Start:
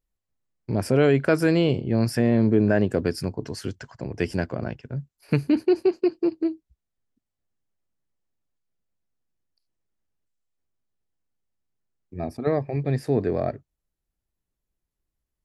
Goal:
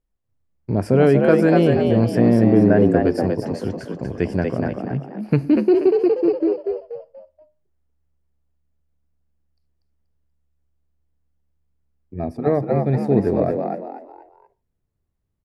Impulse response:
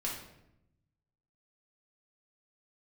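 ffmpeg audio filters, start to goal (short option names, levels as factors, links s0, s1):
-filter_complex "[0:a]highshelf=f=2100:g=-12,asplit=5[s0][s1][s2][s3][s4];[s1]adelay=240,afreqshift=72,volume=0.631[s5];[s2]adelay=480,afreqshift=144,volume=0.214[s6];[s3]adelay=720,afreqshift=216,volume=0.0733[s7];[s4]adelay=960,afreqshift=288,volume=0.0248[s8];[s0][s5][s6][s7][s8]amix=inputs=5:normalize=0,asplit=2[s9][s10];[1:a]atrim=start_sample=2205,atrim=end_sample=6615[s11];[s10][s11]afir=irnorm=-1:irlink=0,volume=0.106[s12];[s9][s12]amix=inputs=2:normalize=0,volume=1.58"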